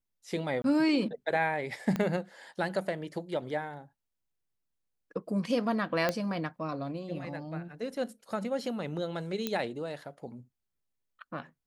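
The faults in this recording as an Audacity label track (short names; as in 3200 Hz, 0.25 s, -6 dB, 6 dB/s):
0.620000	0.640000	gap 22 ms
1.960000	1.960000	pop -18 dBFS
6.090000	6.090000	pop -14 dBFS
9.470000	9.470000	pop -16 dBFS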